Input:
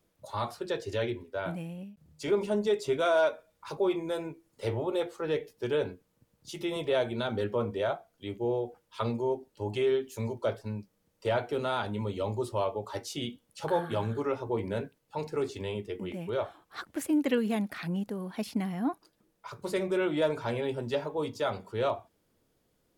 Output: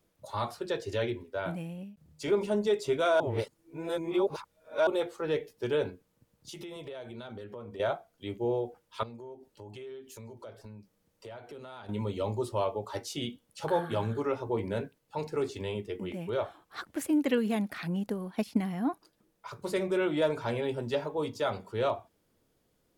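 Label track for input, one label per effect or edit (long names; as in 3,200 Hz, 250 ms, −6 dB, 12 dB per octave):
3.200000	4.870000	reverse
5.890000	7.800000	downward compressor, threshold −40 dBFS
9.030000	11.890000	downward compressor 4 to 1, threshold −45 dBFS
18.040000	18.630000	transient designer attack +4 dB, sustain −6 dB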